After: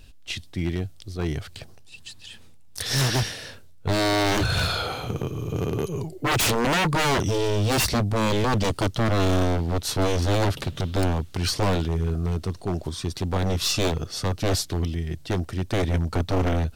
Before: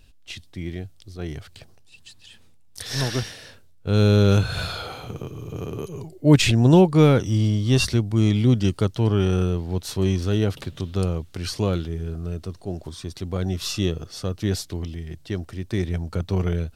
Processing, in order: wavefolder -21.5 dBFS; gain +5 dB

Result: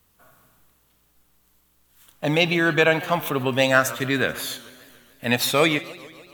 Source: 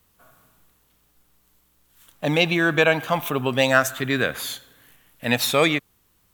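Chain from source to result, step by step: de-hum 186.5 Hz, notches 32; warbling echo 0.145 s, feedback 65%, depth 199 cents, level -19.5 dB

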